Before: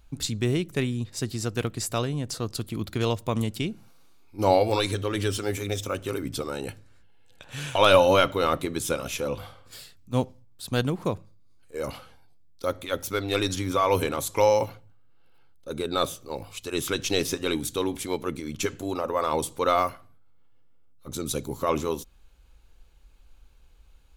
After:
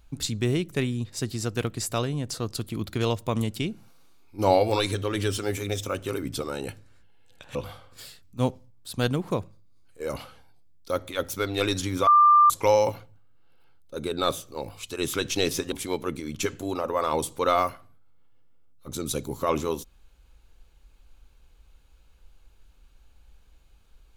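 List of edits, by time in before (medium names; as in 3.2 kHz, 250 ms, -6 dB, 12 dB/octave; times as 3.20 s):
7.55–9.29 s: delete
13.81–14.24 s: bleep 1.19 kHz -12.5 dBFS
17.46–17.92 s: delete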